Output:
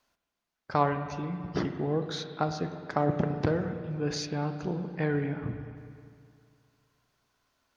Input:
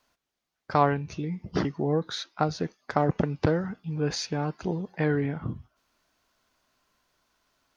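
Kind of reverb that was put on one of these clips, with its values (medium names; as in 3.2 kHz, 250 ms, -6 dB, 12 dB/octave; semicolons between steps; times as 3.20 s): spring tank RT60 2.3 s, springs 34/51/57 ms, chirp 70 ms, DRR 7 dB; trim -3.5 dB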